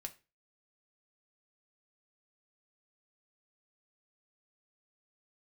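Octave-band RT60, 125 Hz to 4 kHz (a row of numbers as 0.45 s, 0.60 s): 0.40 s, 0.35 s, 0.30 s, 0.30 s, 0.30 s, 0.25 s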